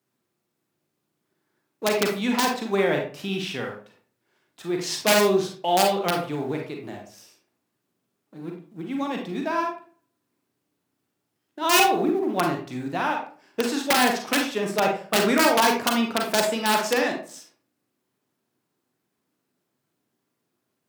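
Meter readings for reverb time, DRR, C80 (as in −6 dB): 0.40 s, 1.0 dB, 10.5 dB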